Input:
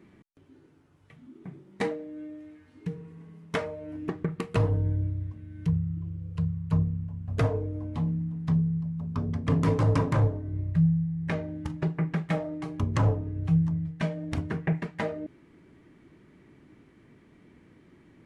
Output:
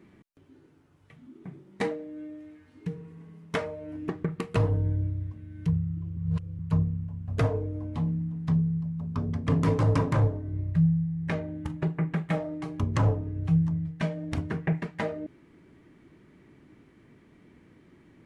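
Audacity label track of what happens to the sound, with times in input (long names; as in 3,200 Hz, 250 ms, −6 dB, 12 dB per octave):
6.170000	6.590000	reverse
11.390000	12.340000	parametric band 5,200 Hz −5.5 dB 0.69 octaves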